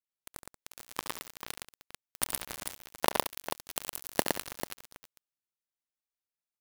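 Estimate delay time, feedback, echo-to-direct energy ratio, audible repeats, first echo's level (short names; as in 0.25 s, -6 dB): 70 ms, no steady repeat, -1.5 dB, 4, -11.5 dB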